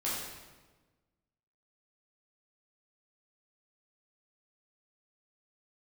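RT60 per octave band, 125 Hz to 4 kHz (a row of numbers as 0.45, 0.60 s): 1.7, 1.6, 1.4, 1.2, 1.1, 1.0 s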